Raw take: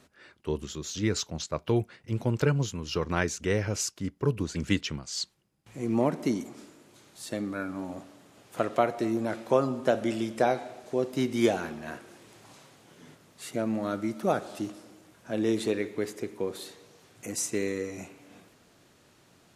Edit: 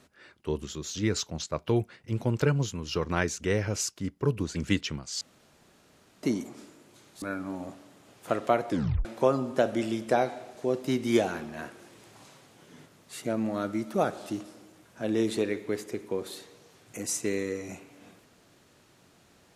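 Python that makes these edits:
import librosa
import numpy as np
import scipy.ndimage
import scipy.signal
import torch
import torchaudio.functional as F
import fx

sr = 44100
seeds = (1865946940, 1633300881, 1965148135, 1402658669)

y = fx.edit(x, sr, fx.room_tone_fill(start_s=5.21, length_s=1.02),
    fx.cut(start_s=7.22, length_s=0.29),
    fx.tape_stop(start_s=8.98, length_s=0.36), tone=tone)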